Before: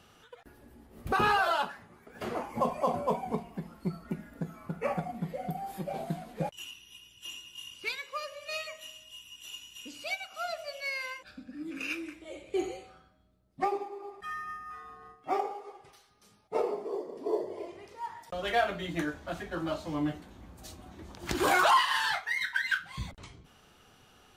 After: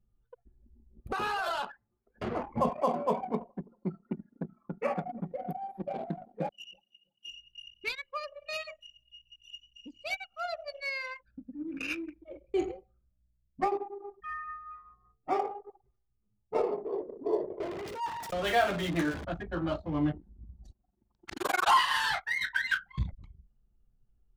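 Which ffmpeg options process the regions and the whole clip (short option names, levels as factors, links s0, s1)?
-filter_complex "[0:a]asettb=1/sr,asplit=3[s0][s1][s2];[s0]atrim=end=1.004[s3];[s1]atrim=start=1:end=2.18,asetpts=PTS-STARTPTS,afade=t=in:d=0.004:c=qsin,afade=t=out:st=1.176:d=0.004:c=qsin,bass=f=250:g=-12,treble=f=4000:g=6,acompressor=threshold=0.0398:ratio=8:attack=3.2:release=140:knee=1:detection=peak,asoftclip=type=hard:threshold=0.0501[s4];[s2]atrim=start=2.176[s5];[s3][s4]acrossfade=d=0.004:c1=hsin:c2=qsin[s6];[s6][s5]acrossfade=d=0.004:c1=qsin:c2=hsin,asettb=1/sr,asplit=3[s7][s8][s9];[s7]atrim=end=2.694[s10];[s8]atrim=start=2.69:end=7.29,asetpts=PTS-STARTPTS,afade=t=in:d=0.004:c=qsin,afade=t=out:st=4.596:d=0.004:c=qsin,highpass=f=200:w=0.5412,highpass=f=200:w=1.3066,asplit=2[s11][s12];[s12]adelay=328,lowpass=f=4400:p=1,volume=0.106,asplit=2[s13][s14];[s14]adelay=328,lowpass=f=4400:p=1,volume=0.45,asplit=2[s15][s16];[s16]adelay=328,lowpass=f=4400:p=1,volume=0.45[s17];[s11][s13][s15][s17]amix=inputs=4:normalize=0,atrim=end_sample=202860[s18];[s9]atrim=start=7.286[s19];[s10][s18]acrossfade=d=0.004:c1=hsin:c2=qsin[s20];[s20][s19]acrossfade=d=0.004:c1=qsin:c2=hsin,asettb=1/sr,asplit=3[s21][s22][s23];[s21]atrim=end=17.604[s24];[s22]atrim=start=17.6:end=19.25,asetpts=PTS-STARTPTS,afade=t=in:d=0.004:c=qsin,afade=t=out:st=1.646:d=0.004:c=qsin,aeval=exprs='val(0)+0.5*0.0178*sgn(val(0))':c=same,highpass=f=140:p=1[s25];[s23]atrim=start=19.246[s26];[s24][s25]acrossfade=d=0.004:c1=hsin:c2=qsin[s27];[s27][s26]acrossfade=d=0.004:c1=qsin:c2=hsin,asettb=1/sr,asplit=3[s28][s29][s30];[s28]atrim=end=20.724[s31];[s29]atrim=start=20.72:end=21.68,asetpts=PTS-STARTPTS,afade=t=in:d=0.004:c=qsin,afade=t=out:st=0.956:d=0.004:c=qsin,highpass=f=530:p=1,tremolo=f=23:d=0.974[s32];[s30]atrim=start=21.676[s33];[s31][s32]acrossfade=d=0.004:c1=hsin:c2=qsin[s34];[s34][s33]acrossfade=d=0.004:c1=qsin:c2=hsin,anlmdn=0.631,lowshelf=f=160:g=9"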